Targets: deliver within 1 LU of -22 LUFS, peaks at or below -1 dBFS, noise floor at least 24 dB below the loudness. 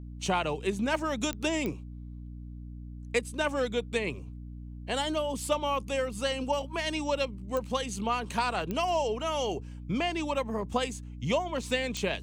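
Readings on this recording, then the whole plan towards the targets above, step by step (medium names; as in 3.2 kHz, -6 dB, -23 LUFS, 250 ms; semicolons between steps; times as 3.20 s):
clicks found 5; hum 60 Hz; highest harmonic 300 Hz; hum level -39 dBFS; loudness -31.0 LUFS; peak level -13.5 dBFS; loudness target -22.0 LUFS
-> de-click; hum notches 60/120/180/240/300 Hz; trim +9 dB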